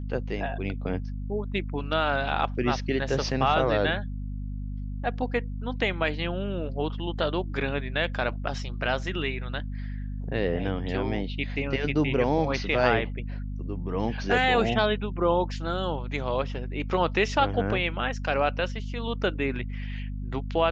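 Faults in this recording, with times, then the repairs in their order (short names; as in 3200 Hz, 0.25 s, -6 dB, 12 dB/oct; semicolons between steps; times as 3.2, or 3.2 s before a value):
hum 50 Hz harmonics 5 -33 dBFS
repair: de-hum 50 Hz, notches 5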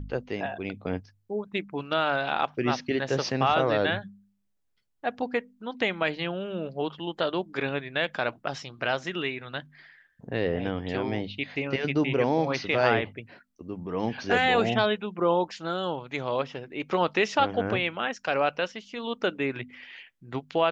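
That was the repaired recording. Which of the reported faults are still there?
none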